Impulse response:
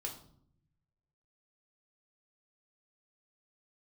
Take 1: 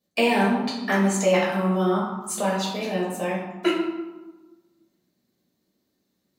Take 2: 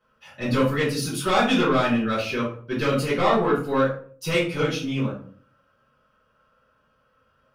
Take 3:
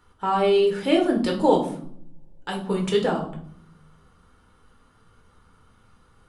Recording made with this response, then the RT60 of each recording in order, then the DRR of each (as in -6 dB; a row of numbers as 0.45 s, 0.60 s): 3; 1.2 s, 0.50 s, 0.65 s; -7.5 dB, -11.0 dB, 0.5 dB